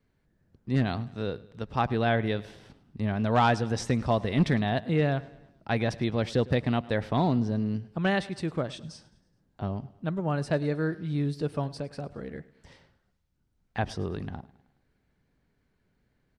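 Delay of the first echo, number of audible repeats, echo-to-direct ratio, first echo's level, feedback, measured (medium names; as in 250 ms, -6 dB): 105 ms, 3, -19.0 dB, -20.5 dB, 51%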